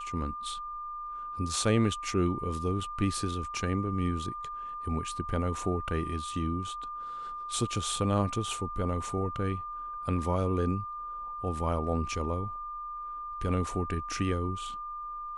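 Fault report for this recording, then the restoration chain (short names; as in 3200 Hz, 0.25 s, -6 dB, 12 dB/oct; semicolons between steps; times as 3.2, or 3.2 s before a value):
tone 1200 Hz -36 dBFS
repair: notch 1200 Hz, Q 30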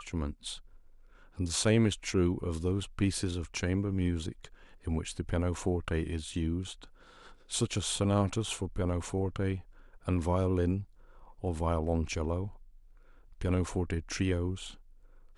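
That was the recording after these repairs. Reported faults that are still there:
none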